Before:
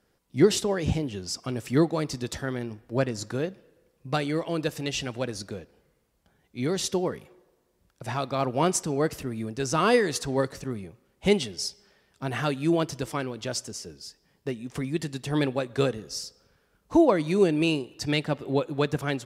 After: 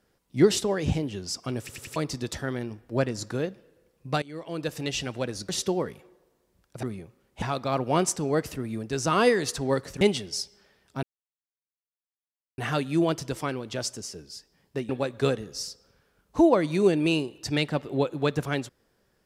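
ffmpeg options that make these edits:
-filter_complex "[0:a]asplit=12[s0][s1][s2][s3][s4][s5][s6][s7][s8][s9][s10][s11];[s0]atrim=end=1.692[s12];[s1]atrim=start=1.598:end=1.692[s13];[s2]atrim=start=1.598:end=1.692[s14];[s3]atrim=start=1.598:end=1.692[s15];[s4]atrim=start=1.958:end=4.22,asetpts=PTS-STARTPTS,afade=t=out:st=2.258:d=0.004:c=hsin:silence=0.0841395[s16];[s5]atrim=start=4.22:end=5.492,asetpts=PTS-STARTPTS,afade=t=in:d=0.6:silence=0.0841395[s17];[s6]atrim=start=6.748:end=8.092[s18];[s7]atrim=start=10.678:end=11.272[s19];[s8]atrim=start=8.088:end=10.682[s20];[s9]atrim=start=11.268:end=12.29,asetpts=PTS-STARTPTS,afade=t=out:st=1.018:d=0.004:c=hsin,apad=pad_dur=1.55[s21];[s10]atrim=start=12.29:end=14.602,asetpts=PTS-STARTPTS,afade=t=in:d=0.004:c=hsin[s22];[s11]atrim=start=15.448[s23];[s12][s13]acrossfade=d=0.004:c1=hsin:c2=hsin[s24];[s24][s14]acrossfade=d=0.004:c1=hsin:c2=hsin[s25];[s25][s15]acrossfade=d=0.004:c1=hsin:c2=hsin[s26];[s16][s17]concat=n=2:v=0:a=1[s27];[s26][s27]acrossfade=d=0.004:c1=hsin:c2=hsin[s28];[s28][s18]acrossfade=d=0.004:c1=hsin:c2=hsin[s29];[s29][s19]acrossfade=d=0.004:c1=hsin:c2=hsin[s30];[s30][s20]acrossfade=d=0.004:c1=hsin:c2=hsin[s31];[s21][s22]concat=n=2:v=0:a=1[s32];[s31][s32]acrossfade=d=0.004:c1=hsin:c2=hsin[s33];[s33][s23]acrossfade=d=0.004:c1=hsin:c2=hsin"

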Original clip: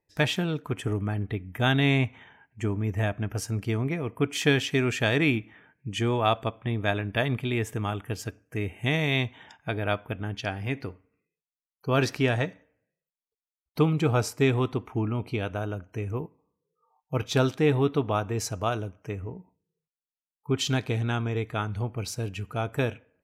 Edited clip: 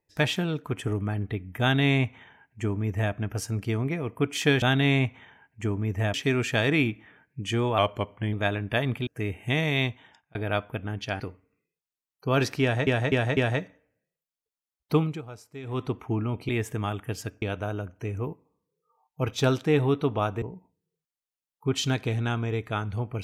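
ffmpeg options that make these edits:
-filter_complex "[0:a]asplit=16[s0][s1][s2][s3][s4][s5][s6][s7][s8][s9][s10][s11][s12][s13][s14][s15];[s0]atrim=end=4.622[s16];[s1]atrim=start=1.608:end=3.132[s17];[s2]atrim=start=4.618:end=6.264[s18];[s3]atrim=start=6.26:end=6.76,asetpts=PTS-STARTPTS,asetrate=40131,aresample=44100[s19];[s4]atrim=start=6.756:end=7.502[s20];[s5]atrim=start=8.428:end=9.71,asetpts=PTS-STARTPTS,afade=t=out:st=0.772:d=0.51[s21];[s6]atrim=start=9.71:end=10.562,asetpts=PTS-STARTPTS,afade=t=in:d=0.004:c=hsin[s22];[s7]atrim=start=10.808:end=12.482[s23];[s8]atrim=start=12.228:end=12.482[s24];[s9]atrim=start=12.228:end=12.482[s25];[s10]atrim=start=12.228:end=14.08,asetpts=PTS-STARTPTS,afade=t=out:st=1.612:d=0.24:silence=0.125893[s26];[s11]atrim=start=14.08:end=14.49,asetpts=PTS-STARTPTS,volume=0.126[s27];[s12]atrim=start=14.49:end=15.352,asetpts=PTS-STARTPTS,afade=t=in:d=0.24:silence=0.125893[s28];[s13]atrim=start=7.498:end=8.432[s29];[s14]atrim=start=15.348:end=18.352[s30];[s15]atrim=start=19.248[s31];[s16][s17]acrossfade=d=0.004:c1=hsin:c2=hsin[s32];[s32][s18]acrossfade=d=0.004:c1=hsin:c2=hsin[s33];[s33][s19]acrossfade=d=0.004:c1=hsin:c2=hsin[s34];[s34][s20]acrossfade=d=0.004:c1=hsin:c2=hsin[s35];[s21][s22]concat=n=2:v=0:a=1[s36];[s35][s36]acrossfade=d=0.004:c1=hsin:c2=hsin[s37];[s37][s23]acrossfade=d=0.004:c1=hsin:c2=hsin[s38];[s38][s24]acrossfade=d=0.004:c1=hsin:c2=hsin[s39];[s39][s25]acrossfade=d=0.004:c1=hsin:c2=hsin[s40];[s26][s27][s28]concat=n=3:v=0:a=1[s41];[s40][s41]acrossfade=d=0.004:c1=hsin:c2=hsin[s42];[s42][s29]acrossfade=d=0.004:c1=hsin:c2=hsin[s43];[s43][s30]acrossfade=d=0.004:c1=hsin:c2=hsin[s44];[s44][s31]acrossfade=d=0.004:c1=hsin:c2=hsin"

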